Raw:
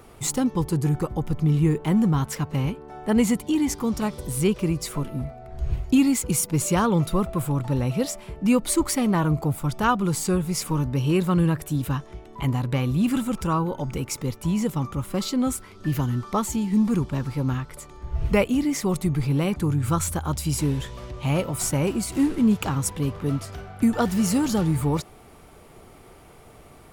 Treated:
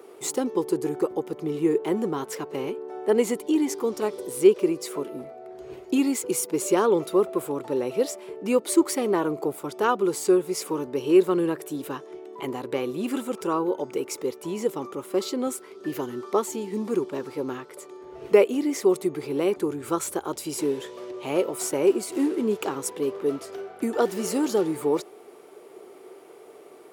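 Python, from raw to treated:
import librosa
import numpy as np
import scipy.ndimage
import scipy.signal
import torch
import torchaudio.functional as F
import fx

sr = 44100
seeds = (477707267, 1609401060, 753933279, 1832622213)

y = fx.highpass_res(x, sr, hz=390.0, q=4.6)
y = y * 10.0 ** (-3.5 / 20.0)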